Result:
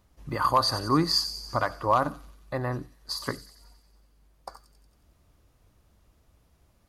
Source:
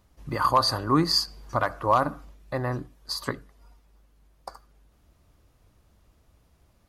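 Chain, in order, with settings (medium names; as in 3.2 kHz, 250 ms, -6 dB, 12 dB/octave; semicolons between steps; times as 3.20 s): feedback echo behind a high-pass 91 ms, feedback 62%, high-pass 5.2 kHz, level -7 dB; trim -1.5 dB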